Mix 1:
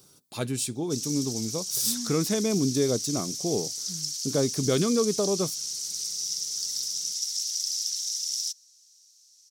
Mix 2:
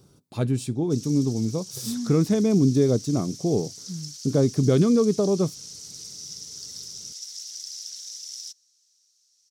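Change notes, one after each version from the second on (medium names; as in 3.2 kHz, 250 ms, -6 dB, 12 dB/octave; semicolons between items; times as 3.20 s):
master: add tilt EQ -3 dB/octave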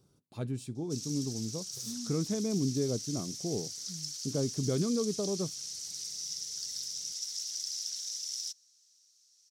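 speech -11.5 dB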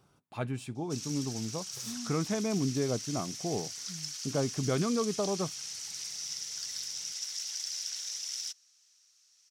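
master: add high-order bell 1.4 kHz +11 dB 2.5 oct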